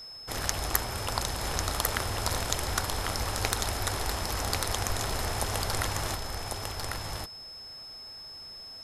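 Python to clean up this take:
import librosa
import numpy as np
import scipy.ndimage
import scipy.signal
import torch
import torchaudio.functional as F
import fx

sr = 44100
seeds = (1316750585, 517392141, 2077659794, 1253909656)

y = fx.fix_declip(x, sr, threshold_db=-7.5)
y = fx.notch(y, sr, hz=5200.0, q=30.0)
y = fx.fix_interpolate(y, sr, at_s=(5.11,), length_ms=1.5)
y = fx.fix_echo_inverse(y, sr, delay_ms=1097, level_db=-4.0)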